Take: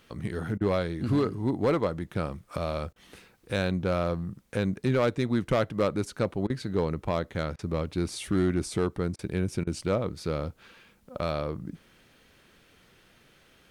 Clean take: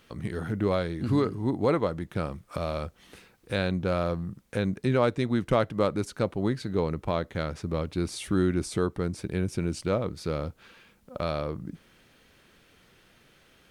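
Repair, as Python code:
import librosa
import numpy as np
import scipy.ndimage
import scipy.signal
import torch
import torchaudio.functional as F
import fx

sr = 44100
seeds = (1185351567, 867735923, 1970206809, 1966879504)

y = fx.fix_declip(x, sr, threshold_db=-18.0)
y = fx.fix_interpolate(y, sr, at_s=(0.58, 2.93, 6.47, 7.56, 9.16, 9.64), length_ms=28.0)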